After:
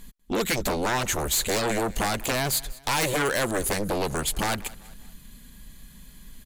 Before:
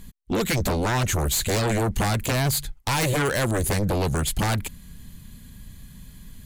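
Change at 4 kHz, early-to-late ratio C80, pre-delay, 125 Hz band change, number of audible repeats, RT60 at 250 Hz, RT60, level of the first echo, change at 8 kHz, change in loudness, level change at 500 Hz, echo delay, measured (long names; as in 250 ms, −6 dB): 0.0 dB, no reverb audible, no reverb audible, −10.0 dB, 3, no reverb audible, no reverb audible, −21.0 dB, 0.0 dB, −2.0 dB, −1.0 dB, 195 ms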